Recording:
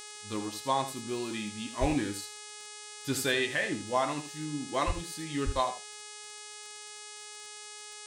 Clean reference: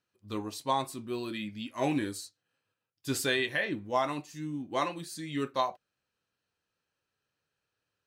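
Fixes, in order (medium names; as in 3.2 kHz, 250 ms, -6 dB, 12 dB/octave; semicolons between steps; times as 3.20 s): de-click; de-hum 419.8 Hz, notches 23; 1.80–1.92 s: high-pass 140 Hz 24 dB/octave; 4.86–4.98 s: high-pass 140 Hz 24 dB/octave; 5.45–5.57 s: high-pass 140 Hz 24 dB/octave; inverse comb 80 ms -11 dB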